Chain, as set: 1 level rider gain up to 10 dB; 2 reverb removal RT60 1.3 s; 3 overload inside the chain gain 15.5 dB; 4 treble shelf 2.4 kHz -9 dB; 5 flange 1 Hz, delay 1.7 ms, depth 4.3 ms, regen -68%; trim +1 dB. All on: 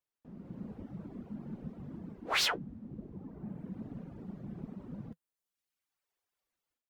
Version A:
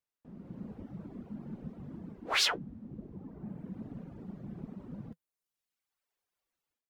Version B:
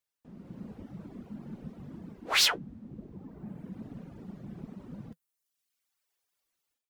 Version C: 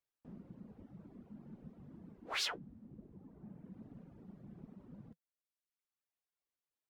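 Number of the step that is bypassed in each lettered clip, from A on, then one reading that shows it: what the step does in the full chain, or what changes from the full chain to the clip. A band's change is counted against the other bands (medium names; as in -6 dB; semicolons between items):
3, distortion -12 dB; 4, 8 kHz band +7.0 dB; 1, momentary loudness spread change +1 LU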